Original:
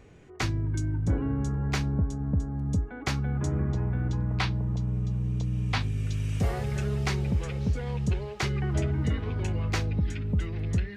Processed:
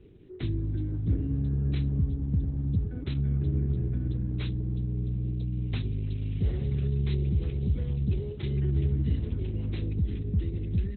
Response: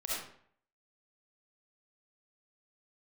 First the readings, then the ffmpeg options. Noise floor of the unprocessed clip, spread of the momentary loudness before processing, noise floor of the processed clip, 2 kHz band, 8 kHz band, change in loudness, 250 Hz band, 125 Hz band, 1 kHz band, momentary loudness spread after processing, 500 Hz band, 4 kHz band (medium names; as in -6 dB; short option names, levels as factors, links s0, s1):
-41 dBFS, 2 LU, -37 dBFS, -14.5 dB, under -35 dB, -0.5 dB, -1.5 dB, -0.5 dB, under -15 dB, 4 LU, -4.0 dB, -9.5 dB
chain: -filter_complex "[0:a]firequalizer=gain_entry='entry(200,0);entry(370,6);entry(650,-17);entry(3500,-2);entry(7900,1)':delay=0.05:min_phase=1,acrossover=split=220|1600[s0][s1][s2];[s0]aecho=1:1:100|200|300|400|500|600|700:0.398|0.235|0.139|0.0818|0.0482|0.0285|0.0168[s3];[s1]alimiter=level_in=3.35:limit=0.0631:level=0:latency=1:release=102,volume=0.299[s4];[s2]asoftclip=type=tanh:threshold=0.0168[s5];[s3][s4][s5]amix=inputs=3:normalize=0" -ar 48000 -c:a libopus -b:a 8k